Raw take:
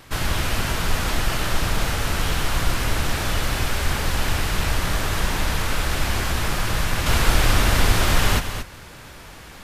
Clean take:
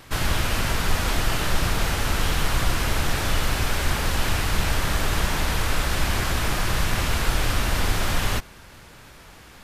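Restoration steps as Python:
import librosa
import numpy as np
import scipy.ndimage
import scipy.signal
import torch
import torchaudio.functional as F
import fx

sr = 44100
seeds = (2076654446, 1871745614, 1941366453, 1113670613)

y = fx.fix_echo_inverse(x, sr, delay_ms=227, level_db=-9.0)
y = fx.fix_level(y, sr, at_s=7.06, step_db=-4.5)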